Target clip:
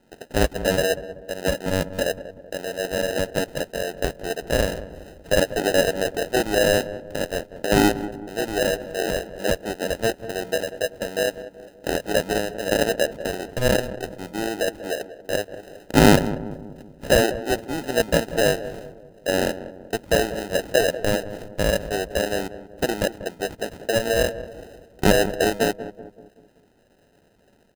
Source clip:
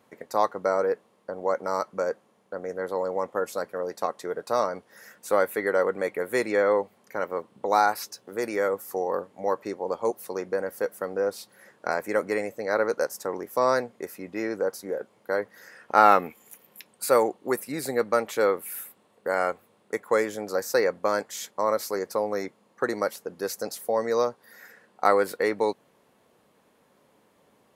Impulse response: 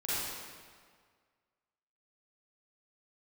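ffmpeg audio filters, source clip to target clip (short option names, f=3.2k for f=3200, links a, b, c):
-filter_complex "[0:a]highshelf=f=3.4k:t=q:w=1.5:g=-6,acrusher=samples=39:mix=1:aa=0.000001,asplit=2[a][b];[b]adelay=190,lowpass=f=960:p=1,volume=-12dB,asplit=2[c][d];[d]adelay=190,lowpass=f=960:p=1,volume=0.51,asplit=2[e][f];[f]adelay=190,lowpass=f=960:p=1,volume=0.51,asplit=2[g][h];[h]adelay=190,lowpass=f=960:p=1,volume=0.51,asplit=2[i][j];[j]adelay=190,lowpass=f=960:p=1,volume=0.51[k];[a][c][e][g][i][k]amix=inputs=6:normalize=0,volume=3dB"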